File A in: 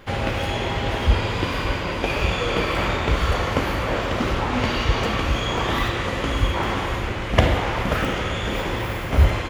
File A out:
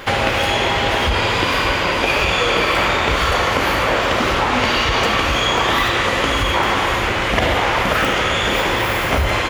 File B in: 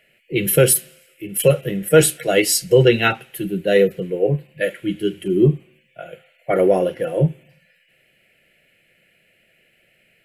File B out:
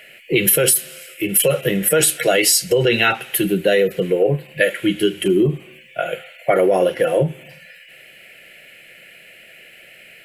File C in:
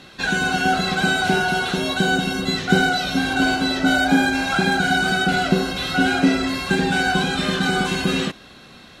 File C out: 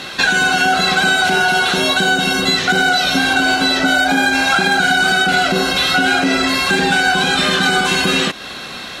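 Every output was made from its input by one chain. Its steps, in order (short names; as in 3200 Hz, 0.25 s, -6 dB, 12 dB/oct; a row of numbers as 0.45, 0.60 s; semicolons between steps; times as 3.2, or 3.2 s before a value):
limiter -10.5 dBFS; low shelf 350 Hz -11 dB; compressor 2.5:1, threshold -33 dBFS; normalise peaks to -2 dBFS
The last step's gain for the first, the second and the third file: +16.0, +16.5, +17.0 dB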